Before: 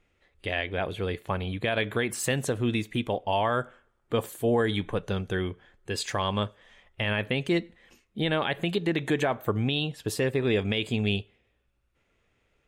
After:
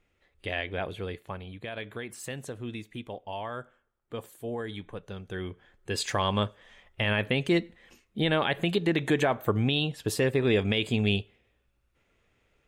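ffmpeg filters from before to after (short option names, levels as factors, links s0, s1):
-af "volume=2.82,afade=t=out:st=0.75:d=0.7:silence=0.398107,afade=t=in:st=5.21:d=0.82:silence=0.266073"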